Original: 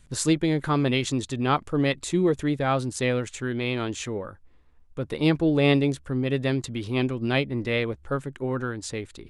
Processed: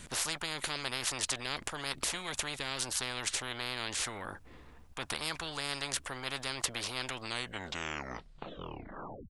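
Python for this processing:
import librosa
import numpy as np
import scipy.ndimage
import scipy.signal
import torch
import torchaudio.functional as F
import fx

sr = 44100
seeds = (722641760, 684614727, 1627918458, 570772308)

y = fx.tape_stop_end(x, sr, length_s=2.13)
y = fx.spectral_comp(y, sr, ratio=10.0)
y = y * 10.0 ** (-3.0 / 20.0)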